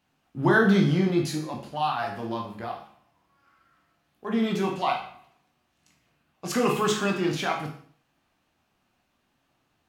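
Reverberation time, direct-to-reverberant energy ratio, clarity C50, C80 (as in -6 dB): 0.50 s, 0.5 dB, 7.0 dB, 10.5 dB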